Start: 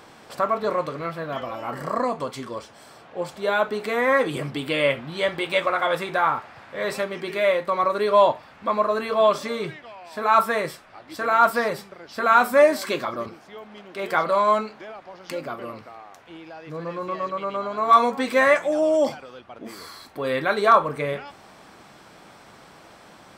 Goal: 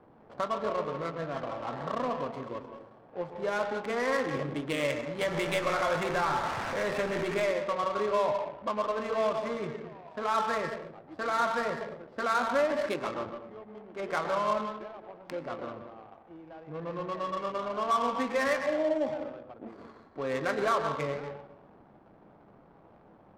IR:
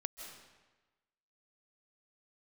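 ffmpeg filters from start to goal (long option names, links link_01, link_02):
-filter_complex "[0:a]asettb=1/sr,asplit=3[link_01][link_02][link_03];[link_01]atrim=end=5.214[link_04];[link_02]atrim=start=5.21:end=7.46,asetpts=PTS-STARTPTS,afade=type=in:duration=0.004:curve=qsin,afade=type=out:start_time=2.246:duration=0.004:curve=qsin,aeval=exprs='val(0)+0.5*0.0631*sgn(val(0))':channel_layout=same[link_05];[link_03]atrim=start=7.456[link_06];[link_04][link_05]acrossfade=duration=0.004:curve1=hsin:curve2=qsin[link_07];[link_07][link_06]acrossfade=duration=0.004:curve1=qsin:curve2=hsin,acrossover=split=210[link_08][link_09];[link_09]acompressor=threshold=-24dB:ratio=2[link_10];[link_08][link_10]amix=inputs=2:normalize=0[link_11];[1:a]atrim=start_sample=2205,asetrate=61740,aresample=44100[link_12];[link_11][link_12]afir=irnorm=-1:irlink=0,adynamicsmooth=sensitivity=5.5:basefreq=580"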